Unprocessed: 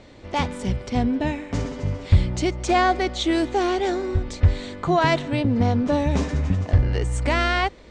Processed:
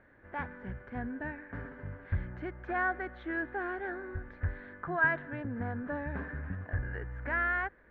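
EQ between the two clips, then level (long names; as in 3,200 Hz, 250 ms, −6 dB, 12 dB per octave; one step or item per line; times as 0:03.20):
transistor ladder low-pass 1,700 Hz, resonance 85%
−4.0 dB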